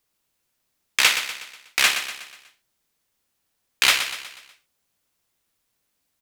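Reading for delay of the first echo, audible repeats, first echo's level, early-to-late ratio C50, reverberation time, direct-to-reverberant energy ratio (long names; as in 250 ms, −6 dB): 122 ms, 4, −9.5 dB, no reverb audible, no reverb audible, no reverb audible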